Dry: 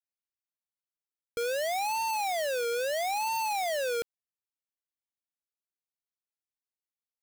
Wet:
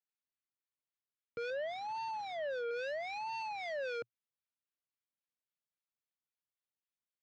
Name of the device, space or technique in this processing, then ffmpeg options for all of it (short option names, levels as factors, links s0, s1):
guitar amplifier with harmonic tremolo: -filter_complex "[0:a]asettb=1/sr,asplit=3[s0][s1][s2];[s0]atrim=end=1.504[s3];[s1]atrim=start=1.5:end=2.71,asetpts=PTS-STARTPTS,afade=t=in:d=0.004:c=qsin,afade=t=out:st=1.206:d=0.004:c=qsin,tiltshelf=f=1100:g=5[s4];[s2]atrim=start=2.706[s5];[s3][s4]acrossfade=d=0.004:c1=hsin:c2=qsin[s6];[s6][s5]acrossfade=d=0.004:c1=qsin:c2=hsin,acrossover=split=1100[s7][s8];[s7]aeval=exprs='val(0)*(1-0.5/2+0.5/2*cos(2*PI*3.7*n/s))':c=same[s9];[s8]aeval=exprs='val(0)*(1-0.5/2-0.5/2*cos(2*PI*3.7*n/s))':c=same[s10];[s9][s10]amix=inputs=2:normalize=0,asoftclip=type=tanh:threshold=0.02,highpass=100,equalizer=f=120:t=q:w=4:g=6,equalizer=f=380:t=q:w=4:g=-7,equalizer=f=760:t=q:w=4:g=-6,lowpass=f=4000:w=0.5412,lowpass=f=4000:w=1.3066"